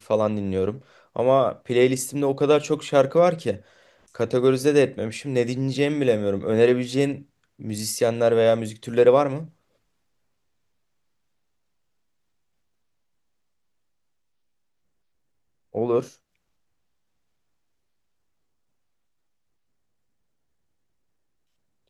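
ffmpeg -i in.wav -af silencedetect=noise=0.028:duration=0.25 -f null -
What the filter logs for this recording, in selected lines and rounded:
silence_start: 0.77
silence_end: 1.16 | silence_duration: 0.39
silence_start: 3.57
silence_end: 4.15 | silence_duration: 0.59
silence_start: 7.18
silence_end: 7.62 | silence_duration: 0.44
silence_start: 9.44
silence_end: 15.75 | silence_duration: 6.31
silence_start: 16.04
silence_end: 21.89 | silence_duration: 5.86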